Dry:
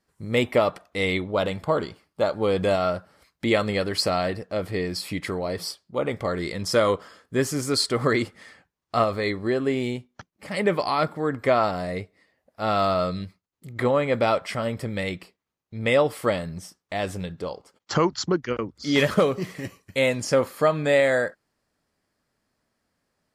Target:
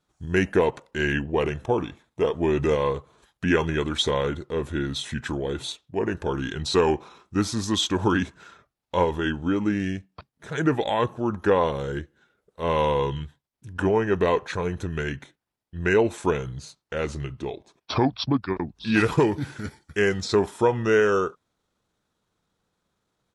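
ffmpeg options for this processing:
ffmpeg -i in.wav -af "asetrate=34006,aresample=44100,atempo=1.29684" out.wav

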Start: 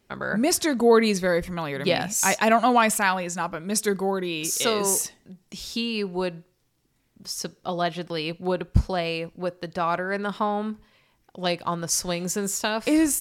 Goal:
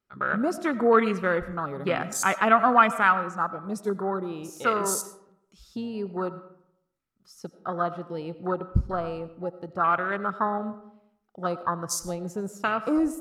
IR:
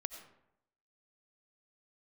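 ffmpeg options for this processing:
-filter_complex "[0:a]afwtdn=0.0398,equalizer=frequency=1300:width_type=o:width=0.35:gain=14.5,asplit=2[link_01][link_02];[1:a]atrim=start_sample=2205[link_03];[link_02][link_03]afir=irnorm=-1:irlink=0,volume=1dB[link_04];[link_01][link_04]amix=inputs=2:normalize=0,volume=-9dB"

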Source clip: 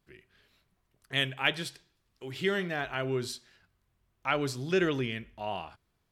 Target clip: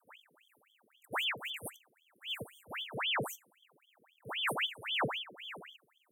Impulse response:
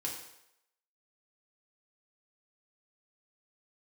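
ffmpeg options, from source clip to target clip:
-filter_complex "[0:a]afreqshift=29,asplit=2[link_01][link_02];[link_02]asoftclip=type=tanh:threshold=-27.5dB,volume=-11.5dB[link_03];[link_01][link_03]amix=inputs=2:normalize=0,afftfilt=real='re*(1-between(b*sr/4096,190,9000))':imag='im*(1-between(b*sr/4096,190,9000))':win_size=4096:overlap=0.75,aeval=exprs='val(0)*sin(2*PI*1800*n/s+1800*0.85/3.8*sin(2*PI*3.8*n/s))':channel_layout=same,volume=6dB"

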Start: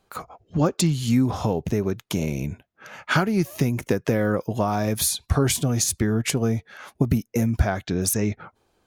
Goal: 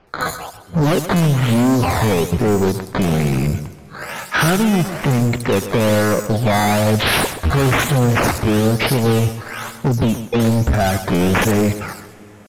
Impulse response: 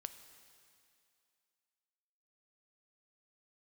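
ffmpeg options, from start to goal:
-filter_complex "[0:a]asplit=2[link_01][link_02];[link_02]alimiter=limit=-14.5dB:level=0:latency=1:release=353,volume=0.5dB[link_03];[link_01][link_03]amix=inputs=2:normalize=0,volume=20dB,asoftclip=hard,volume=-20dB,atempo=0.71,acrusher=samples=11:mix=1:aa=0.000001:lfo=1:lforange=11:lforate=1.1,asplit=2[link_04][link_05];[1:a]atrim=start_sample=2205,asetrate=27783,aresample=44100,adelay=130[link_06];[link_05][link_06]afir=irnorm=-1:irlink=0,volume=-10dB[link_07];[link_04][link_07]amix=inputs=2:normalize=0,aresample=32000,aresample=44100,acrossover=split=4600[link_08][link_09];[link_09]adelay=70[link_10];[link_08][link_10]amix=inputs=2:normalize=0,volume=7.5dB"

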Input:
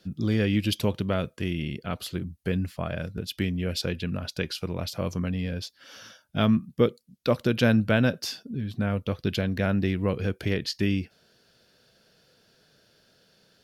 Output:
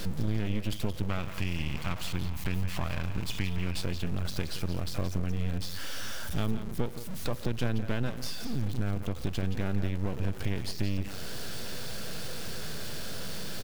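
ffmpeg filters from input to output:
ffmpeg -i in.wav -filter_complex "[0:a]aeval=exprs='val(0)+0.5*0.0316*sgn(val(0))':channel_layout=same,asettb=1/sr,asplit=3[link_01][link_02][link_03];[link_01]atrim=end=1.094[link_04];[link_02]atrim=start=1.09:end=3.83,asetpts=PTS-STARTPTS,afade=type=in:duration=0.004:curve=qsin,afade=type=out:start_time=2.736:duration=0.004:curve=qsin,equalizer=frequency=400:width_type=o:width=0.67:gain=-11,equalizer=frequency=1000:width_type=o:width=0.67:gain=8,equalizer=frequency=2500:width_type=o:width=0.67:gain=8,equalizer=frequency=10000:width_type=o:width=0.67:gain=-4[link_05];[link_03]atrim=start=3.826[link_06];[link_04][link_05]acrossfade=duration=0.004:curve1=hsin:curve2=qsin[link_07];[link_07][link_06]acrossfade=duration=0.004:curve1=qsin:curve2=hsin,acompressor=threshold=-32dB:ratio=3,aecho=1:1:173:0.282,aeval=exprs='max(val(0),0)':channel_layout=same,lowshelf=frequency=160:gain=9.5" out.wav

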